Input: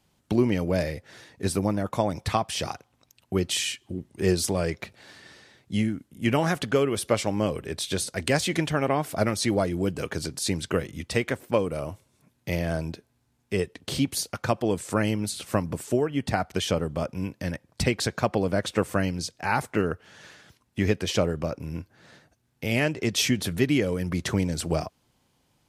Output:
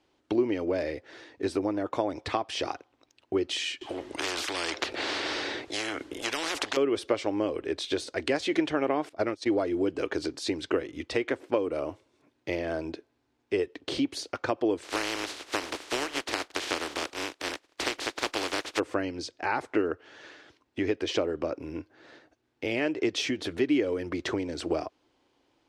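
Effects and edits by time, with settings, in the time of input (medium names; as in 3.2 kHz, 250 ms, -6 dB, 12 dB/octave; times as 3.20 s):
3.81–6.77 s: spectrum-flattening compressor 10:1
9.09–9.51 s: gate -27 dBFS, range -19 dB
14.82–18.78 s: spectral contrast reduction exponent 0.17
whole clip: compression 3:1, threshold -25 dBFS; low-pass 4.5 kHz 12 dB/octave; resonant low shelf 240 Hz -8.5 dB, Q 3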